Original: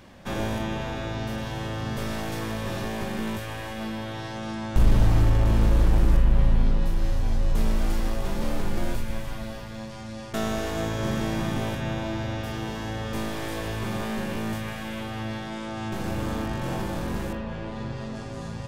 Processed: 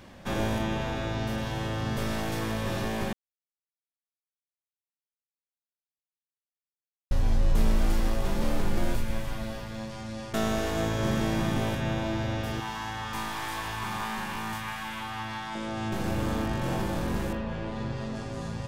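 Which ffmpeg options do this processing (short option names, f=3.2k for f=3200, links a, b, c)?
-filter_complex "[0:a]asettb=1/sr,asplit=3[a][b][c];[a]atrim=end=12.604[d];[b]atrim=start=12.6:end=15.55,asetpts=PTS-STARTPTS,afade=t=in:d=0.004:c=qsin,afade=t=out:st=2.946:d=0.004:c=qsin,lowshelf=f=710:t=q:w=3:g=-7.5[e];[c]atrim=start=15.546[f];[d][e]acrossfade=d=0.004:c1=hsin:c2=qsin[g];[g][f]acrossfade=d=0.004:c1=qsin:c2=hsin,asplit=3[h][i][j];[h]atrim=end=3.13,asetpts=PTS-STARTPTS,afade=t=out:st=3.126:d=0.004:c=hsin[k];[i]atrim=start=3.13:end=7.11,asetpts=PTS-STARTPTS,volume=0[l];[j]atrim=start=7.11,asetpts=PTS-STARTPTS,afade=t=in:d=0.004:c=hsin[m];[k][l][m]concat=n=3:v=0:a=1"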